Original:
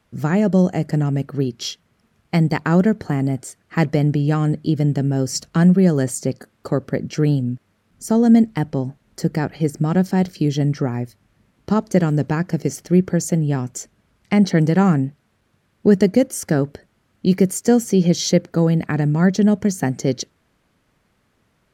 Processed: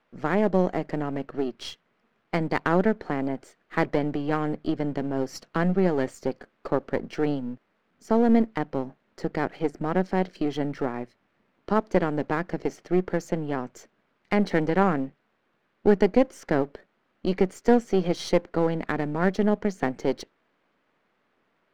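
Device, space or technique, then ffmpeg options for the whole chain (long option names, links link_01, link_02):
crystal radio: -af "highpass=300,lowpass=2800,aeval=exprs='if(lt(val(0),0),0.447*val(0),val(0))':channel_layout=same"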